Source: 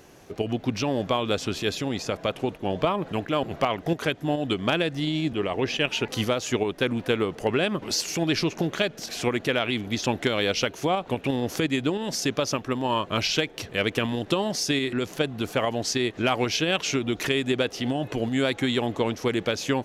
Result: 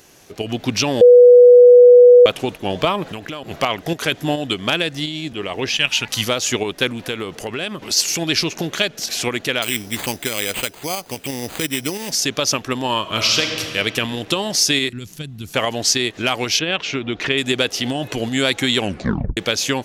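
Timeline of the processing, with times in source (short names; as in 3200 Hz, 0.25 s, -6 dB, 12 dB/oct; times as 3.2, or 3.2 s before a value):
1.01–2.26 bleep 490 Hz -8.5 dBFS
3.06–3.48 compressor 12:1, threshold -30 dBFS
4.12–5.06 gain +5 dB
5.69–6.27 bell 400 Hz -11.5 dB 1.2 oct
6.88–7.97 compressor 2:1, threshold -29 dBFS
9.62–12.12 careless resampling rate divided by 8×, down none, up hold
12.99–13.68 reverb throw, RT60 2.4 s, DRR 3 dB
14.89–15.54 EQ curve 150 Hz 0 dB, 570 Hz -21 dB, 12000 Hz -9 dB
16.59–17.38 LPF 2900 Hz
18.79 tape stop 0.58 s
whole clip: high shelf 2200 Hz +11.5 dB; AGC; gain -2 dB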